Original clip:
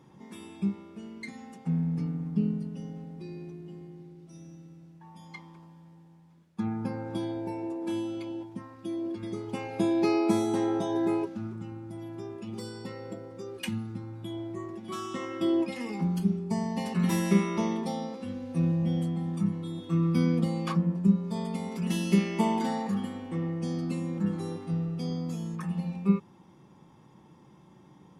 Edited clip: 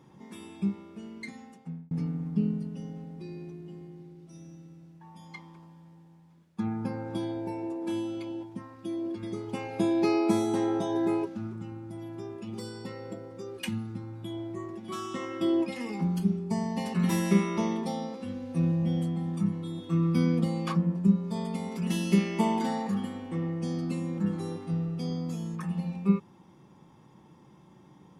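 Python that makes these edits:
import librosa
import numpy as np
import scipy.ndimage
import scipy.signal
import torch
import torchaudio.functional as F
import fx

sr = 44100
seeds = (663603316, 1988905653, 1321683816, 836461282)

y = fx.edit(x, sr, fx.fade_out_span(start_s=1.26, length_s=0.65), tone=tone)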